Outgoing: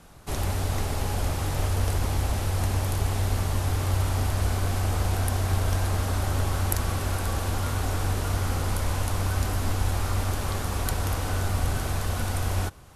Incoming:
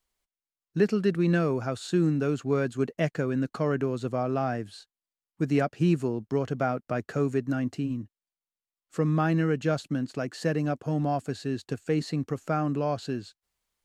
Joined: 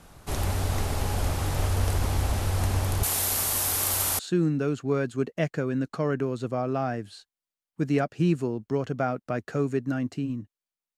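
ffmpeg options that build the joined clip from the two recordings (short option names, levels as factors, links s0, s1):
-filter_complex "[0:a]asettb=1/sr,asplit=3[s0][s1][s2];[s0]atrim=end=3.034[s3];[s1]atrim=start=3.03:end=4.19,asetpts=PTS-STARTPTS,afade=t=in:d=0.004:c=qsin,afade=t=out:st=1.156:d=0.004:c=qsin,aemphasis=mode=production:type=riaa[s4];[s2]atrim=start=4.186[s5];[s3][s4]acrossfade=d=0.004:c1=hsin:c2=qsin[s6];[s6][s5]acrossfade=d=0.004:c1=qsin:c2=hsin,apad=whole_dur=10.97,atrim=end=10.97,atrim=end=4.192[s7];[1:a]atrim=start=1.798:end=8.58[s8];[s7][s8]acrossfade=d=0.004:c1=hsin:c2=hsin"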